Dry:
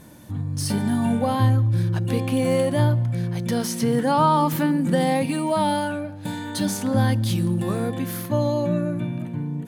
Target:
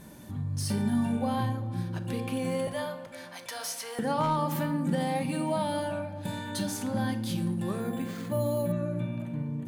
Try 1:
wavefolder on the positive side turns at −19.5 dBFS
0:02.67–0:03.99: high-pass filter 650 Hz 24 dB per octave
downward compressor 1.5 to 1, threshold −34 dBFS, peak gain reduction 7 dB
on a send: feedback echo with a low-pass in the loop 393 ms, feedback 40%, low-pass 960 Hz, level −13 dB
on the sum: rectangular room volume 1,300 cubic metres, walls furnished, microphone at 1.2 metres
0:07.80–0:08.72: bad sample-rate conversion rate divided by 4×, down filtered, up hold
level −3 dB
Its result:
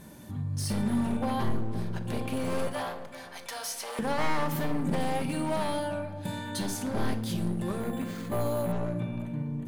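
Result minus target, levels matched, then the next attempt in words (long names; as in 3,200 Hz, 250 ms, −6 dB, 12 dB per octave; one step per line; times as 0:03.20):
wavefolder on the positive side: distortion +26 dB
wavefolder on the positive side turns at −10.5 dBFS
0:02.67–0:03.99: high-pass filter 650 Hz 24 dB per octave
downward compressor 1.5 to 1, threshold −34 dBFS, peak gain reduction 7 dB
on a send: feedback echo with a low-pass in the loop 393 ms, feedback 40%, low-pass 960 Hz, level −13 dB
on the sum: rectangular room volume 1,300 cubic metres, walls furnished, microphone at 1.2 metres
0:07.80–0:08.72: bad sample-rate conversion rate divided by 4×, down filtered, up hold
level −3 dB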